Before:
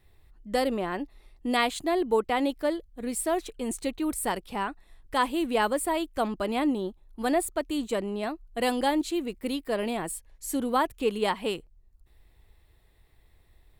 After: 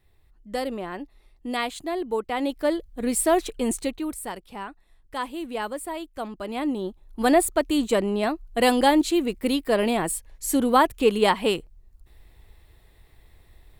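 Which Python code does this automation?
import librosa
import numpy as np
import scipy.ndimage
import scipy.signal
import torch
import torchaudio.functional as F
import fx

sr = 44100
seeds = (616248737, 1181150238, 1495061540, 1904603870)

y = fx.gain(x, sr, db=fx.line((2.25, -2.5), (2.88, 7.0), (3.66, 7.0), (4.26, -5.0), (6.35, -5.0), (7.22, 7.0)))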